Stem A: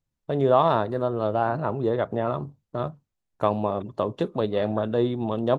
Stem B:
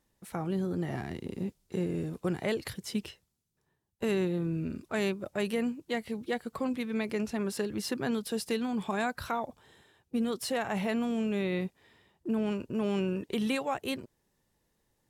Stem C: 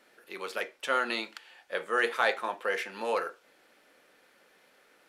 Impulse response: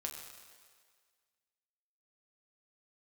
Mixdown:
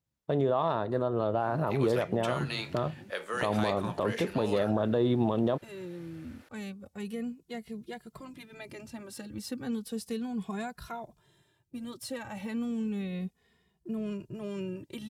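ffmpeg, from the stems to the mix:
-filter_complex "[0:a]highpass=59,volume=0.841[s0];[1:a]bass=f=250:g=8,treble=f=4000:g=4,asplit=2[s1][s2];[s2]adelay=2.4,afreqshift=-0.33[s3];[s1][s3]amix=inputs=2:normalize=1,adelay=1600,volume=0.141[s4];[2:a]acrossover=split=170|3000[s5][s6][s7];[s6]acompressor=threshold=0.0158:ratio=6[s8];[s5][s8][s7]amix=inputs=3:normalize=0,adelay=1400,volume=1.41[s9];[s0][s4]amix=inputs=2:normalize=0,dynaudnorm=f=550:g=5:m=3.76,alimiter=limit=0.211:level=0:latency=1:release=90,volume=1[s10];[s9][s10]amix=inputs=2:normalize=0,alimiter=limit=0.133:level=0:latency=1:release=393"

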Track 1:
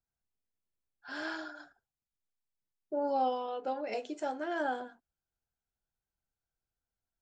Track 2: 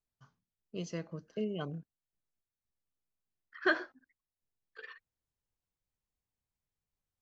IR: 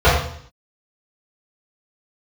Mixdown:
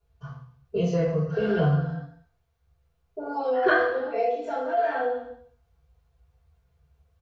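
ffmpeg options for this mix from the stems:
-filter_complex "[0:a]highpass=180,aecho=1:1:4.4:0.88,adelay=250,volume=0.708,asplit=2[s0][s1];[s1]volume=0.158[s2];[1:a]aphaser=in_gain=1:out_gain=1:delay=4.8:decay=0.21:speed=1.9:type=sinusoidal,volume=0.944,asplit=3[s3][s4][s5];[s4]volume=0.422[s6];[s5]apad=whole_len=329535[s7];[s0][s7]sidechaincompress=threshold=0.00158:ratio=8:attack=16:release=807[s8];[2:a]atrim=start_sample=2205[s9];[s2][s6]amix=inputs=2:normalize=0[s10];[s10][s9]afir=irnorm=-1:irlink=0[s11];[s8][s3][s11]amix=inputs=3:normalize=0,acompressor=threshold=0.0501:ratio=2"

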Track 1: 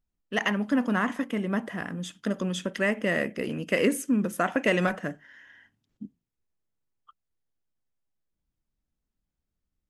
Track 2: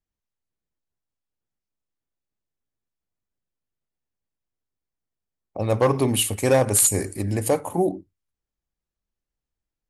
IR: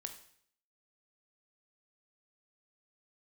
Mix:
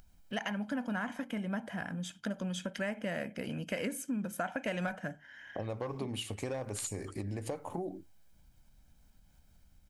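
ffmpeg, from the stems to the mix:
-filter_complex "[0:a]aecho=1:1:1.3:0.57,acompressor=mode=upward:threshold=0.00891:ratio=2.5,volume=0.75[s0];[1:a]lowpass=5700,acompressor=threshold=0.0316:ratio=3,volume=0.75[s1];[s0][s1]amix=inputs=2:normalize=0,acompressor=threshold=0.0158:ratio=2.5"

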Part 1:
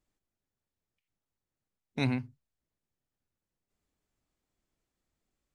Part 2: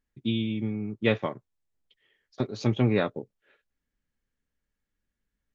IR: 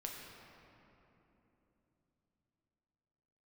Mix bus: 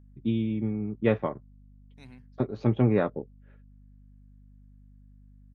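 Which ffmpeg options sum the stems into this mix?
-filter_complex "[0:a]volume=0.133[s0];[1:a]lowpass=1400,aeval=exprs='val(0)+0.00224*(sin(2*PI*50*n/s)+sin(2*PI*2*50*n/s)/2+sin(2*PI*3*50*n/s)/3+sin(2*PI*4*50*n/s)/4+sin(2*PI*5*50*n/s)/5)':c=same,volume=1.12,asplit=2[s1][s2];[s2]apad=whole_len=248930[s3];[s0][s3]sidechaincompress=threshold=0.00891:ratio=8:attack=38:release=775[s4];[s4][s1]amix=inputs=2:normalize=0,highshelf=f=5800:g=11"

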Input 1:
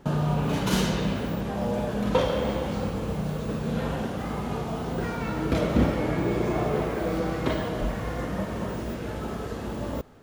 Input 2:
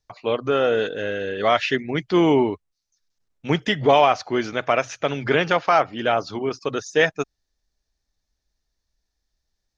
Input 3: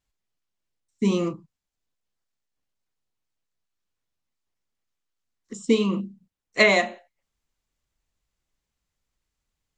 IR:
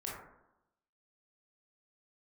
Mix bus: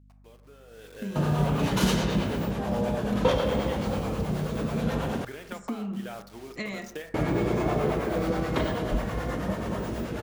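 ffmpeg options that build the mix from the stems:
-filter_complex "[0:a]acrossover=split=500[s0][s1];[s0]aeval=exprs='val(0)*(1-0.5/2+0.5/2*cos(2*PI*9.3*n/s))':c=same[s2];[s1]aeval=exprs='val(0)*(1-0.5/2-0.5/2*cos(2*PI*9.3*n/s))':c=same[s3];[s2][s3]amix=inputs=2:normalize=0,adelay=1100,volume=1.33,asplit=3[s4][s5][s6];[s4]atrim=end=5.25,asetpts=PTS-STARTPTS,afade=t=out:st=5.246:d=0.004:c=hsin[s7];[s5]atrim=start=5.25:end=7.14,asetpts=PTS-STARTPTS,volume=0[s8];[s6]atrim=start=7.14,asetpts=PTS-STARTPTS,afade=t=in:d=0.004:c=hsin[s9];[s7][s8][s9]concat=n=3:v=0:a=1[s10];[1:a]acompressor=threshold=0.0562:ratio=4,acrusher=bits=5:mix=0:aa=0.000001,volume=0.376,afade=t=in:st=0.66:d=0.31:silence=0.237137,asplit=2[s11][s12];[s12]volume=0.2[s13];[2:a]asubboost=boost=8:cutoff=230,volume=0.282,asplit=3[s14][s15][s16];[s15]volume=0.141[s17];[s16]apad=whole_len=431088[s18];[s11][s18]sidechaingate=range=0.398:threshold=0.00251:ratio=16:detection=peak[s19];[s19][s14]amix=inputs=2:normalize=0,aeval=exprs='val(0)+0.002*(sin(2*PI*50*n/s)+sin(2*PI*2*50*n/s)/2+sin(2*PI*3*50*n/s)/3+sin(2*PI*4*50*n/s)/4+sin(2*PI*5*50*n/s)/5)':c=same,acompressor=threshold=0.0178:ratio=4,volume=1[s20];[3:a]atrim=start_sample=2205[s21];[s13][s17]amix=inputs=2:normalize=0[s22];[s22][s21]afir=irnorm=-1:irlink=0[s23];[s10][s20][s23]amix=inputs=3:normalize=0"

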